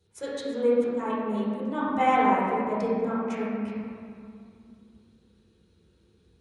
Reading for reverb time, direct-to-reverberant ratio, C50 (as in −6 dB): 2.4 s, −9.5 dB, −3.0 dB